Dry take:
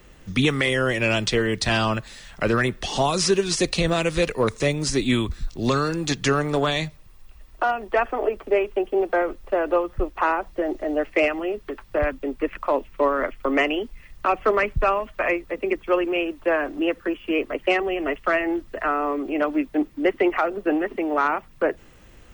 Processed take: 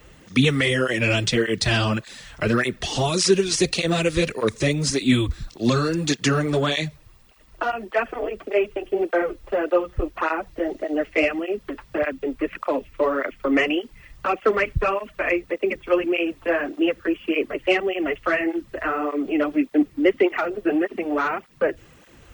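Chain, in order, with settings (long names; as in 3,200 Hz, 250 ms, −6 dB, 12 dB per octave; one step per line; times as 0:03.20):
dynamic equaliser 930 Hz, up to −7 dB, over −37 dBFS, Q 1.3
through-zero flanger with one copy inverted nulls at 1.7 Hz, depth 5.7 ms
level +5 dB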